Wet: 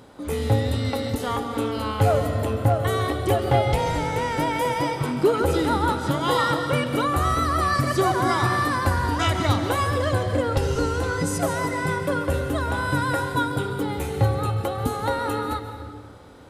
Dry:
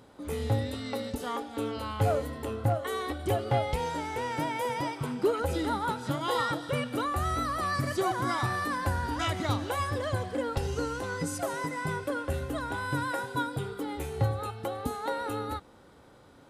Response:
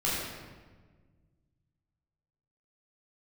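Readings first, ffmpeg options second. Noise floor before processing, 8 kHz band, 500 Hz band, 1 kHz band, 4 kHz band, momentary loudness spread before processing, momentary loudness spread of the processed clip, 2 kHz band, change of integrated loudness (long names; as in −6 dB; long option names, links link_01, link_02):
−55 dBFS, +7.5 dB, +8.0 dB, +7.5 dB, +7.5 dB, 6 LU, 6 LU, +7.5 dB, +8.0 dB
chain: -filter_complex "[0:a]asplit=2[link_01][link_02];[1:a]atrim=start_sample=2205,adelay=133[link_03];[link_02][link_03]afir=irnorm=-1:irlink=0,volume=-17dB[link_04];[link_01][link_04]amix=inputs=2:normalize=0,volume=7dB"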